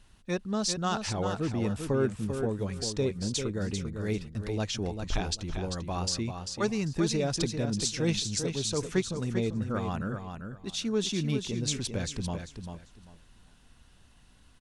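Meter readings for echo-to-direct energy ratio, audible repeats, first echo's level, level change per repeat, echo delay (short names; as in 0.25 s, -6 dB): -7.0 dB, 3, -7.0 dB, -13.5 dB, 0.394 s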